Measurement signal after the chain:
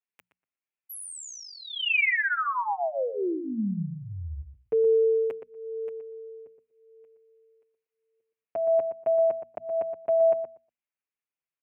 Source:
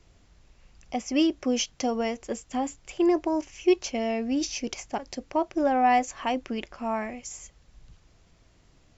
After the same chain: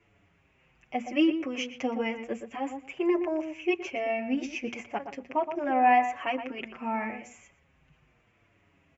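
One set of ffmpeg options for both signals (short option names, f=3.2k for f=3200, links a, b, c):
-filter_complex "[0:a]highpass=100,highshelf=f=3.3k:t=q:w=3:g=-9.5,bandreject=f=60:t=h:w=6,bandreject=f=120:t=h:w=6,bandreject=f=180:t=h:w=6,bandreject=f=240:t=h:w=6,asplit=2[a][b];[b]adelay=120,lowpass=f=1.7k:p=1,volume=-8dB,asplit=2[c][d];[d]adelay=120,lowpass=f=1.7k:p=1,volume=0.16,asplit=2[e][f];[f]adelay=120,lowpass=f=1.7k:p=1,volume=0.16[g];[a][c][e][g]amix=inputs=4:normalize=0,asplit=2[h][i];[i]adelay=6.5,afreqshift=-0.83[j];[h][j]amix=inputs=2:normalize=1"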